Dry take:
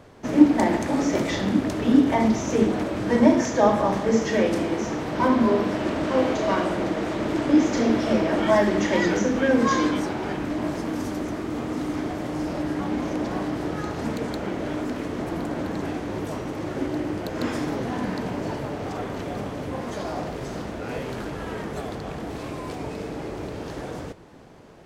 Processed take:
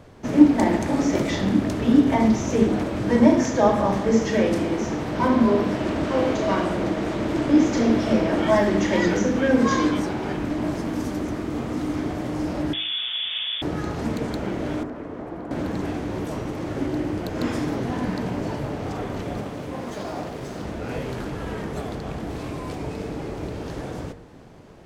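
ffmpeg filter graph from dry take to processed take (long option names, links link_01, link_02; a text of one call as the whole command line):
ffmpeg -i in.wav -filter_complex "[0:a]asettb=1/sr,asplit=3[link_01][link_02][link_03];[link_01]atrim=end=12.734[link_04];[link_02]atrim=start=12.73:end=13.62,asetpts=PTS-STARTPTS,afade=type=in:duration=0.004:curve=qsin,afade=type=out:start_time=0.886:duration=0.004:curve=qsin,asoftclip=type=hard:threshold=-23dB,lowpass=frequency=3100:width_type=q:width=0.5098,lowpass=frequency=3100:width_type=q:width=0.6013,lowpass=frequency=3100:width_type=q:width=0.9,lowpass=frequency=3100:width_type=q:width=2.563,afreqshift=-3700[link_05];[link_03]atrim=start=13.616[link_06];[link_04][link_05]acrossfade=duration=0.004:curve1=hsin:curve2=qsin[link_07];[link_07][link_06]acrossfade=duration=0.004:curve1=qsin:curve2=hsin,asettb=1/sr,asplit=3[link_08][link_09][link_10];[link_08]atrim=end=14.834[link_11];[link_09]atrim=start=14.83:end=15.51,asetpts=PTS-STARTPTS,afade=type=in:duration=0.004:curve=qsin,afade=type=out:start_time=0.676:duration=0.004:curve=qsin,acrossover=split=130|340|1900[link_12][link_13][link_14][link_15];[link_12]acompressor=threshold=-54dB:ratio=3[link_16];[link_13]acompressor=threshold=-45dB:ratio=3[link_17];[link_14]acompressor=threshold=-34dB:ratio=3[link_18];[link_15]acompressor=threshold=-58dB:ratio=3[link_19];[link_16][link_17][link_18][link_19]amix=inputs=4:normalize=0,highshelf=frequency=3100:gain=-11[link_20];[link_10]atrim=start=15.506[link_21];[link_11][link_20]acrossfade=duration=0.004:curve1=hsin:curve2=qsin[link_22];[link_22][link_21]acrossfade=duration=0.004:curve1=qsin:curve2=hsin,asettb=1/sr,asplit=3[link_23][link_24][link_25];[link_23]atrim=end=19.404[link_26];[link_24]atrim=start=19.4:end=20.63,asetpts=PTS-STARTPTS,afade=type=in:duration=0.004:curve=qsin,afade=type=out:start_time=1.226:duration=0.004:curve=qsin,lowshelf=frequency=81:gain=-11.5,aeval=exprs='sgn(val(0))*max(abs(val(0))-0.00398,0)':channel_layout=same[link_27];[link_25]atrim=start=20.626[link_28];[link_26][link_27]acrossfade=duration=0.004:curve1=hsin:curve2=qsin[link_29];[link_29][link_28]acrossfade=duration=0.004:curve1=qsin:curve2=hsin,lowshelf=frequency=200:gain=6,bandreject=frequency=52.05:width_type=h:width=4,bandreject=frequency=104.1:width_type=h:width=4,bandreject=frequency=156.15:width_type=h:width=4,bandreject=frequency=208.2:width_type=h:width=4,bandreject=frequency=260.25:width_type=h:width=4,bandreject=frequency=312.3:width_type=h:width=4,bandreject=frequency=364.35:width_type=h:width=4,bandreject=frequency=416.4:width_type=h:width=4,bandreject=frequency=468.45:width_type=h:width=4,bandreject=frequency=520.5:width_type=h:width=4,bandreject=frequency=572.55:width_type=h:width=4,bandreject=frequency=624.6:width_type=h:width=4,bandreject=frequency=676.65:width_type=h:width=4,bandreject=frequency=728.7:width_type=h:width=4,bandreject=frequency=780.75:width_type=h:width=4,bandreject=frequency=832.8:width_type=h:width=4,bandreject=frequency=884.85:width_type=h:width=4,bandreject=frequency=936.9:width_type=h:width=4,bandreject=frequency=988.95:width_type=h:width=4,bandreject=frequency=1041:width_type=h:width=4,bandreject=frequency=1093.05:width_type=h:width=4,bandreject=frequency=1145.1:width_type=h:width=4,bandreject=frequency=1197.15:width_type=h:width=4,bandreject=frequency=1249.2:width_type=h:width=4,bandreject=frequency=1301.25:width_type=h:width=4,bandreject=frequency=1353.3:width_type=h:width=4,bandreject=frequency=1405.35:width_type=h:width=4,bandreject=frequency=1457.4:width_type=h:width=4,bandreject=frequency=1509.45:width_type=h:width=4,bandreject=frequency=1561.5:width_type=h:width=4,bandreject=frequency=1613.55:width_type=h:width=4,bandreject=frequency=1665.6:width_type=h:width=4,bandreject=frequency=1717.65:width_type=h:width=4,bandreject=frequency=1769.7:width_type=h:width=4,bandreject=frequency=1821.75:width_type=h:width=4,bandreject=frequency=1873.8:width_type=h:width=4,bandreject=frequency=1925.85:width_type=h:width=4,bandreject=frequency=1977.9:width_type=h:width=4,bandreject=frequency=2029.95:width_type=h:width=4" out.wav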